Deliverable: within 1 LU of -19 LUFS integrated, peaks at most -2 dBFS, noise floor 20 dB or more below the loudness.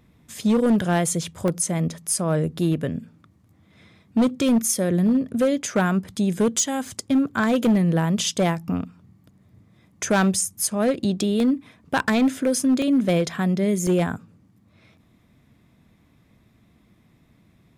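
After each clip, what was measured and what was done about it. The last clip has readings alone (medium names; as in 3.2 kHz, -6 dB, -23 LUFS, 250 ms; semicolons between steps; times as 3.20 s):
clipped samples 1.8%; clipping level -14.0 dBFS; dropouts 6; longest dropout 1.6 ms; loudness -22.0 LUFS; peak level -14.0 dBFS; loudness target -19.0 LUFS
-> clip repair -14 dBFS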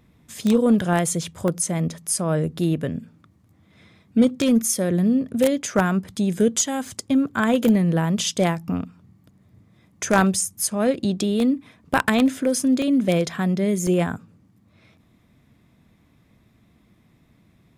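clipped samples 0.0%; dropouts 6; longest dropout 1.6 ms
-> interpolate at 1.48/2.08/6.88/11.40/12.82/13.87 s, 1.6 ms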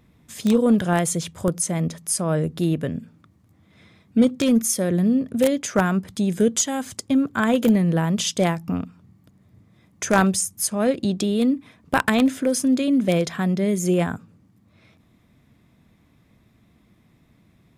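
dropouts 0; loudness -21.5 LUFS; peak level -5.0 dBFS; loudness target -19.0 LUFS
-> trim +2.5 dB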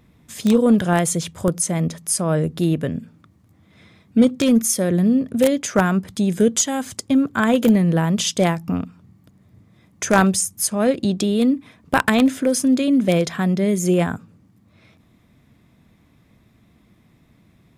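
loudness -19.0 LUFS; peak level -2.5 dBFS; noise floor -57 dBFS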